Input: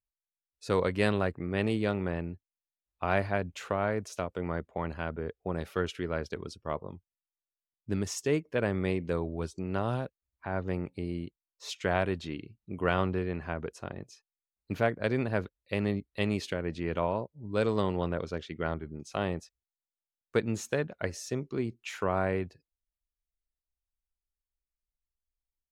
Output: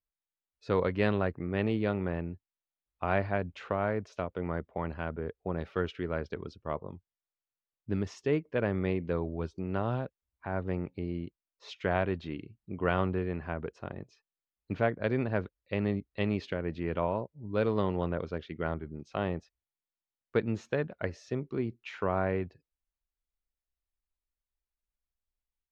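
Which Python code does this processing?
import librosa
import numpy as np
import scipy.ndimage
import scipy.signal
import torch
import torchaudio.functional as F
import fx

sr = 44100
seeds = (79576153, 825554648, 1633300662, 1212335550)

y = fx.air_absorb(x, sr, metres=220.0)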